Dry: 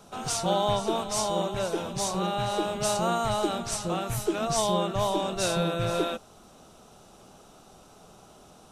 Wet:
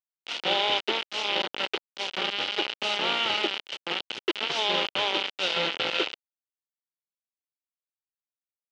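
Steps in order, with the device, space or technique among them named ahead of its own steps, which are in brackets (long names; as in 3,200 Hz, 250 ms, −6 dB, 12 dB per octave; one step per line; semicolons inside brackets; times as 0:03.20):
hand-held game console (bit reduction 4 bits; loudspeaker in its box 420–4,100 Hz, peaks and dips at 670 Hz −9 dB, 1,100 Hz −9 dB, 1,700 Hz −5 dB, 3,000 Hz +9 dB)
level +2 dB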